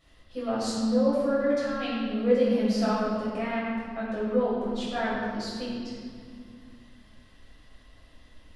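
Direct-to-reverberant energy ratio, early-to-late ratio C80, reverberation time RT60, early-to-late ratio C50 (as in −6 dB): −10.5 dB, 0.0 dB, 2.2 s, −2.0 dB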